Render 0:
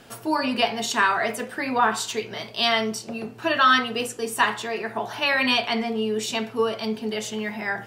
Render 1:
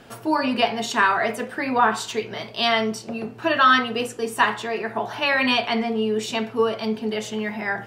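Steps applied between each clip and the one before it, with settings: high shelf 4000 Hz -7.5 dB; gain +2.5 dB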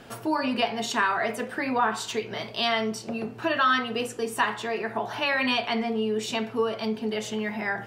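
compressor 1.5:1, threshold -30 dBFS, peak gain reduction 7 dB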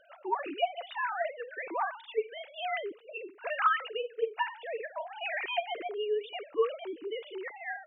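sine-wave speech; gain -7 dB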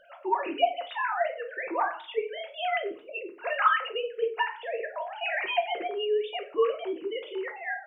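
shoebox room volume 240 m³, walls furnished, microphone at 0.92 m; gain +3.5 dB

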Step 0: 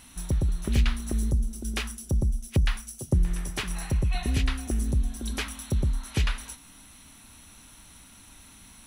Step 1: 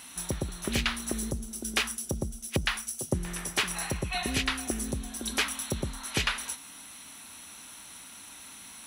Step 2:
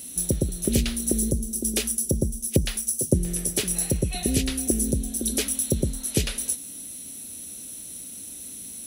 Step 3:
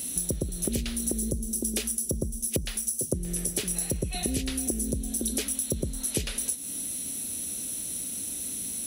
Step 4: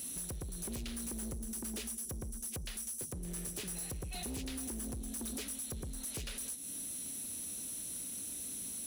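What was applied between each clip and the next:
HPF 480 Hz 6 dB/oct; gain +5.5 dB
EQ curve 510 Hz 0 dB, 1000 Hz -24 dB, 11000 Hz +3 dB; gain +8.5 dB
compressor 5:1, threshold -31 dBFS, peak gain reduction 15 dB; gain +4.5 dB
hard clip -30 dBFS, distortion -7 dB; gain -7.5 dB

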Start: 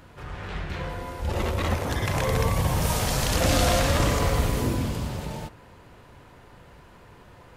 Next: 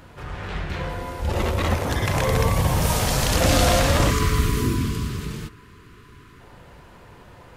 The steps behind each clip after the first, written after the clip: spectral gain 4.1–6.4, 460–970 Hz -18 dB; gain +3.5 dB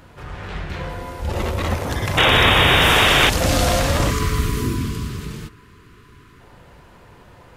painted sound noise, 2.17–3.3, 230–3800 Hz -15 dBFS

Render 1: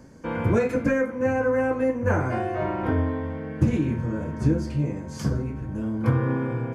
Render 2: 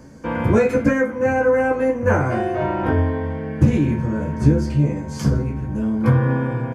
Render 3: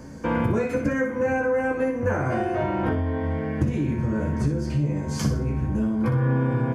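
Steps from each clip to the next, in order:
doubler 14 ms -6 dB; gain +4.5 dB
compressor, threshold -23 dBFS, peak gain reduction 14.5 dB; flutter echo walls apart 10.4 m, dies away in 0.41 s; gain +2 dB

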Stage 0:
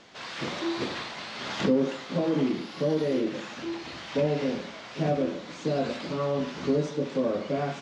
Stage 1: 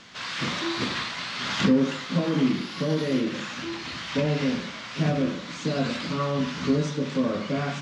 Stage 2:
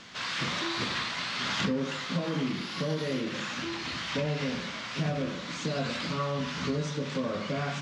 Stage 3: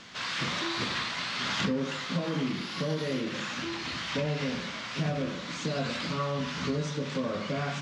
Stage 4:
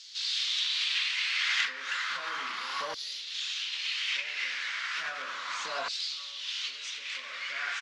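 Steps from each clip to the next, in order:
band shelf 520 Hz -8 dB; de-hum 72.91 Hz, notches 37; gain +6.5 dB
dynamic EQ 280 Hz, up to -6 dB, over -36 dBFS, Q 1.3; compressor 2:1, threshold -29 dBFS, peak gain reduction 5.5 dB
nothing audible
outdoor echo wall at 160 m, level -12 dB; LFO high-pass saw down 0.34 Hz 930–4600 Hz

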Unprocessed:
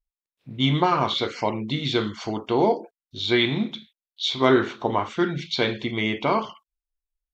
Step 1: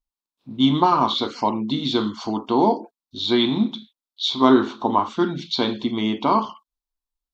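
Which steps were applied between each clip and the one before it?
ten-band EQ 125 Hz -5 dB, 250 Hz +11 dB, 500 Hz -4 dB, 1000 Hz +11 dB, 2000 Hz -11 dB, 4000 Hz +7 dB; gain -2 dB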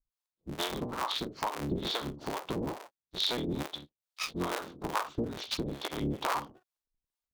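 cycle switcher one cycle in 3, inverted; compressor 6:1, threshold -26 dBFS, peak gain reduction 15.5 dB; harmonic tremolo 2.3 Hz, depth 100%, crossover 480 Hz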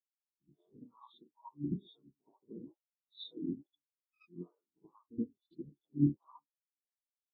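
limiter -21.5 dBFS, peak gain reduction 10.5 dB; reverse echo 76 ms -5 dB; spectral expander 4:1; gain +3 dB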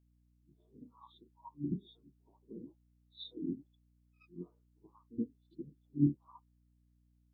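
hum 60 Hz, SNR 28 dB

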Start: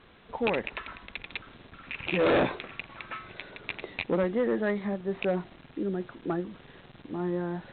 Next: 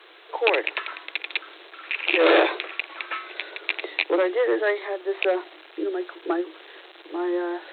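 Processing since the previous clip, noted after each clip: Chebyshev high-pass 310 Hz, order 10; high shelf 2900 Hz +8.5 dB; gain +6.5 dB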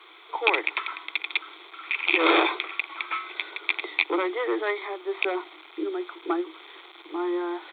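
comb 0.9 ms, depth 67%; gain -1.5 dB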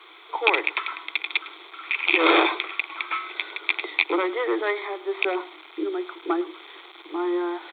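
echo 0.105 s -18.5 dB; gain +2 dB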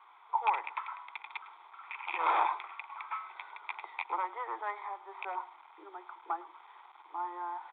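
ladder band-pass 980 Hz, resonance 70%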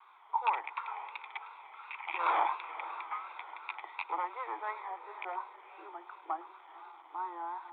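diffused feedback echo 0.51 s, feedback 46%, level -13.5 dB; vibrato 2.8 Hz 78 cents; gain -1 dB

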